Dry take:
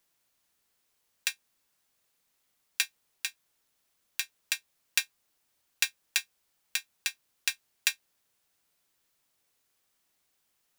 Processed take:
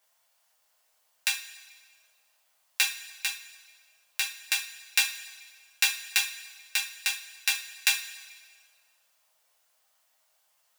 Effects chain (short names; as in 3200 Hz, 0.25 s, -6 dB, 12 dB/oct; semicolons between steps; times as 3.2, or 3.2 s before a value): resonant low shelf 480 Hz -10 dB, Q 3; two-slope reverb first 0.31 s, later 1.7 s, from -17 dB, DRR -3 dB